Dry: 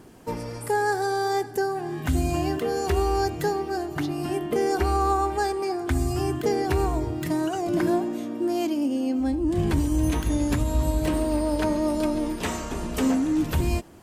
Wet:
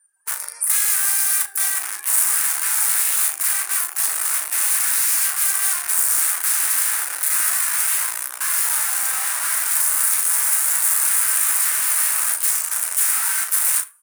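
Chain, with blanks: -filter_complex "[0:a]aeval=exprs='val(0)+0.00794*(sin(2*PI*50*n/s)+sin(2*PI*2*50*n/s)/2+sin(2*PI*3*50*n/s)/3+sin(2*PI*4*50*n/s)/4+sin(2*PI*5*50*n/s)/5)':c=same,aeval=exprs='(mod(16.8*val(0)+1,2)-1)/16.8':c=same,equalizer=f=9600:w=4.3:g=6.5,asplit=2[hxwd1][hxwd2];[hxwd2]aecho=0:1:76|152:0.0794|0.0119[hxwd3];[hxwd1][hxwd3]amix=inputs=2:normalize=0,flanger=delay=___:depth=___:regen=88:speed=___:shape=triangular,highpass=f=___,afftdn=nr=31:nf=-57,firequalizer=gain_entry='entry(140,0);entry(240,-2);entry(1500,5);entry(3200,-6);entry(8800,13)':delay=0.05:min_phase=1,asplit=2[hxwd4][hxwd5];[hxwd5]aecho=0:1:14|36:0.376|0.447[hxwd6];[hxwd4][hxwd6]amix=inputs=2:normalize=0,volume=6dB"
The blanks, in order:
5.8, 4.4, 0.99, 1500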